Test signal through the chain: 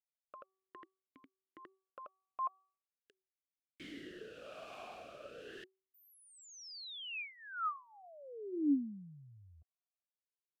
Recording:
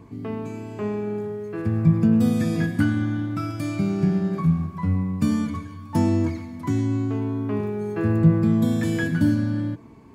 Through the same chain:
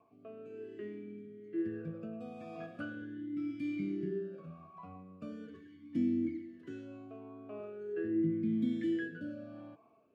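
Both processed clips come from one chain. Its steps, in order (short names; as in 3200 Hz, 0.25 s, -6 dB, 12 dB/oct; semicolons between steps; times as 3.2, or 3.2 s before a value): de-hum 381 Hz, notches 3; rotary speaker horn 1 Hz; vowel sweep a-i 0.41 Hz; gain -1 dB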